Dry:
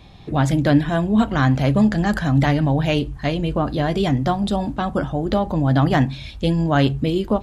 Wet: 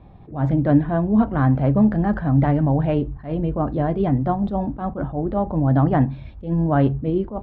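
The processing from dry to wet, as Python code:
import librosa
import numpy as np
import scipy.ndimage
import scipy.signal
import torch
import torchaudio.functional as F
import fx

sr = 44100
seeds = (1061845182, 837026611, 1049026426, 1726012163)

y = scipy.signal.sosfilt(scipy.signal.butter(2, 1100.0, 'lowpass', fs=sr, output='sos'), x)
y = fx.attack_slew(y, sr, db_per_s=160.0)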